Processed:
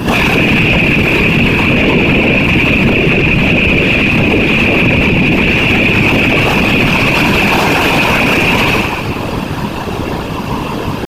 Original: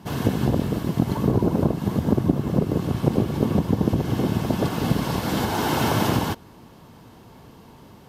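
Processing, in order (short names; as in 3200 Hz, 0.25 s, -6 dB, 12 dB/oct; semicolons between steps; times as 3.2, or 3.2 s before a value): rattling part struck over -24 dBFS, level -13 dBFS; compressor 2.5:1, threshold -24 dBFS, peak gain reduction 8.5 dB; tempo 0.73×; high shelf 8700 Hz -9.5 dB; upward compressor, threshold -40 dBFS; bell 2600 Hz +8.5 dB 0.3 oct; comb 5.2 ms, depth 94%; two-slope reverb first 0.68 s, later 2.1 s, DRR -9 dB; whisperiser; maximiser +17 dB; gain -1 dB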